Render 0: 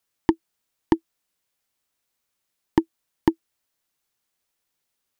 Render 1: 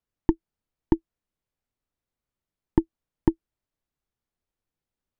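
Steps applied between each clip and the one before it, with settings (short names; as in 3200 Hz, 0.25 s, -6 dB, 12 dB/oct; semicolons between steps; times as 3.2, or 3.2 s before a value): tilt -3.5 dB/oct; gain -8 dB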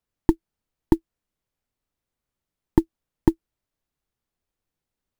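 short-mantissa float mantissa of 4-bit; gain +3 dB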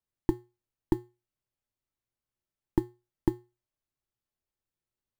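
resonator 120 Hz, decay 0.28 s, harmonics odd, mix 70%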